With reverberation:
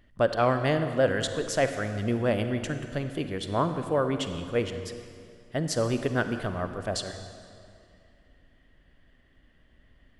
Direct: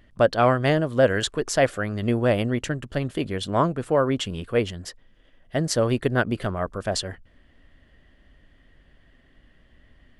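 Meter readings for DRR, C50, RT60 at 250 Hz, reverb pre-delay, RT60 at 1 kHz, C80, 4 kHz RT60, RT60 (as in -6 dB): 8.0 dB, 8.5 dB, 2.5 s, 38 ms, 2.4 s, 9.0 dB, 1.9 s, 2.5 s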